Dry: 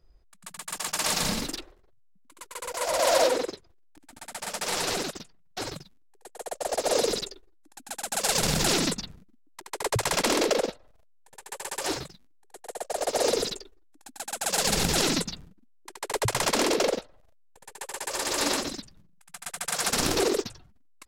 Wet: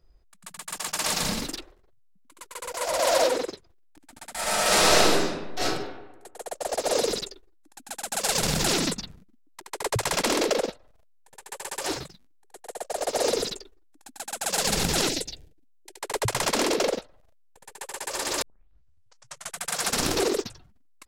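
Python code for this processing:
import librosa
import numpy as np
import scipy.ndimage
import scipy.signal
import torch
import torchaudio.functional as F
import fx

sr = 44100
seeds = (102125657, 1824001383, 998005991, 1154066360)

y = fx.reverb_throw(x, sr, start_s=4.32, length_s=1.3, rt60_s=1.1, drr_db=-10.5)
y = fx.fixed_phaser(y, sr, hz=480.0, stages=4, at=(15.09, 15.98))
y = fx.edit(y, sr, fx.tape_start(start_s=18.42, length_s=1.16), tone=tone)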